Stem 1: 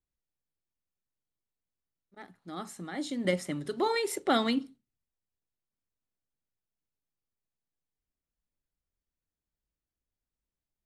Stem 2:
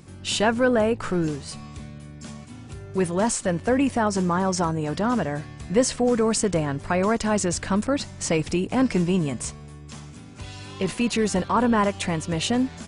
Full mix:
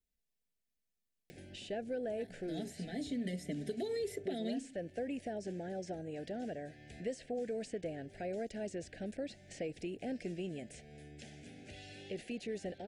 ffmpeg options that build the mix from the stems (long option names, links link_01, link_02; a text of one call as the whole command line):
ffmpeg -i stem1.wav -i stem2.wav -filter_complex "[0:a]aecho=1:1:4.5:0.93,alimiter=limit=-20.5dB:level=0:latency=1:release=151,volume=-2dB[link_01];[1:a]bass=frequency=250:gain=-11,treble=frequency=4000:gain=-9,acompressor=mode=upward:threshold=-30dB:ratio=2.5,adelay=1300,volume=-12dB[link_02];[link_01][link_02]amix=inputs=2:normalize=0,asuperstop=centerf=1100:order=8:qfactor=1.3,acrossover=split=720|3900[link_03][link_04][link_05];[link_03]acompressor=threshold=-36dB:ratio=4[link_06];[link_04]acompressor=threshold=-53dB:ratio=4[link_07];[link_05]acompressor=threshold=-56dB:ratio=4[link_08];[link_06][link_07][link_08]amix=inputs=3:normalize=0" out.wav